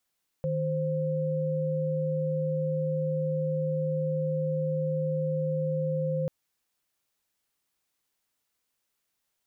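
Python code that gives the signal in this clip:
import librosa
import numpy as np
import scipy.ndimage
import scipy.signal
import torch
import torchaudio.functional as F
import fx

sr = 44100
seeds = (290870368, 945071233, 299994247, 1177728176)

y = fx.chord(sr, length_s=5.84, notes=(51, 72), wave='sine', level_db=-28.5)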